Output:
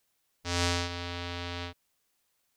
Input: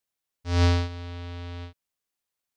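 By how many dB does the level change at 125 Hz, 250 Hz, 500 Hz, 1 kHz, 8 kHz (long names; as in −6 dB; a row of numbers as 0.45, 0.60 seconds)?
−11.0 dB, −6.5 dB, −3.5 dB, −1.0 dB, can't be measured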